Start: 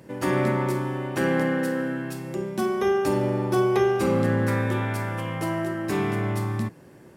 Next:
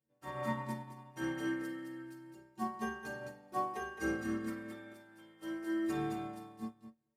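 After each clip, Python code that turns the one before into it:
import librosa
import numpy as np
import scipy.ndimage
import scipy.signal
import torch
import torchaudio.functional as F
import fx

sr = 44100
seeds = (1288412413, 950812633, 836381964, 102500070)

y = fx.stiff_resonator(x, sr, f0_hz=67.0, decay_s=0.58, stiffness=0.03)
y = fx.echo_feedback(y, sr, ms=215, feedback_pct=16, wet_db=-3.5)
y = fx.upward_expand(y, sr, threshold_db=-49.0, expansion=2.5)
y = y * 10.0 ** (-1.0 / 20.0)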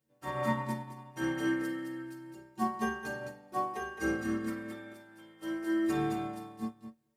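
y = fx.rider(x, sr, range_db=10, speed_s=2.0)
y = y * 10.0 ** (2.5 / 20.0)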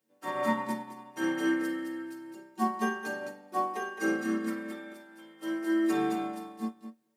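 y = scipy.signal.sosfilt(scipy.signal.butter(6, 180.0, 'highpass', fs=sr, output='sos'), x)
y = y * 10.0 ** (3.0 / 20.0)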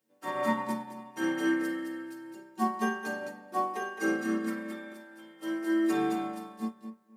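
y = fx.echo_bbd(x, sr, ms=251, stages=4096, feedback_pct=33, wet_db=-18.0)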